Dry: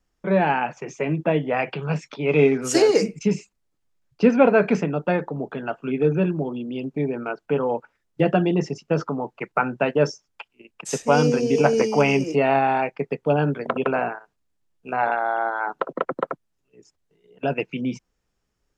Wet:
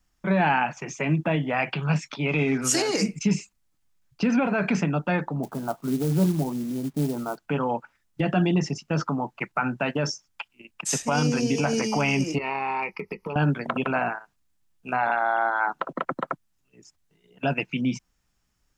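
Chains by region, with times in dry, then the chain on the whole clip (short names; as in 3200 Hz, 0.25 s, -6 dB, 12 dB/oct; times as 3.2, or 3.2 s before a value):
5.43–7.38 steep low-pass 1200 Hz + companded quantiser 6-bit
12.38–13.36 ripple EQ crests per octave 0.85, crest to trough 16 dB + compressor 4:1, threshold -27 dBFS + small resonant body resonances 350/1300/2900 Hz, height 11 dB, ringing for 95 ms
whole clip: high shelf 6500 Hz +5 dB; limiter -13.5 dBFS; bell 450 Hz -10.5 dB 0.83 oct; gain +3 dB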